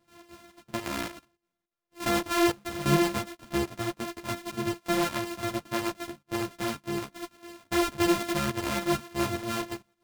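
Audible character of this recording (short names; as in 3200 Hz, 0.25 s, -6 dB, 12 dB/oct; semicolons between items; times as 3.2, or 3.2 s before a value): a buzz of ramps at a fixed pitch in blocks of 128 samples; chopped level 3.5 Hz, depth 65%, duty 75%; a shimmering, thickened sound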